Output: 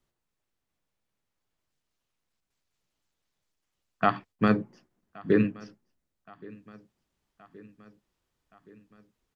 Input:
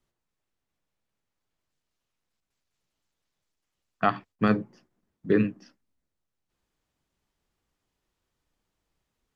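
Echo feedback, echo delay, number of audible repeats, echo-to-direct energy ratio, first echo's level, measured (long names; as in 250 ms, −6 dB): 60%, 1,122 ms, 3, −21.0 dB, −23.0 dB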